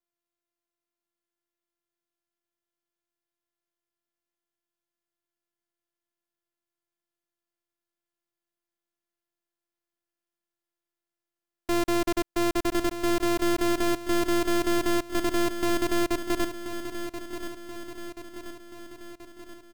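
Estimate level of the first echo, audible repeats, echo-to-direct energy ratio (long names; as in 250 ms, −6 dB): −10.0 dB, 6, −8.5 dB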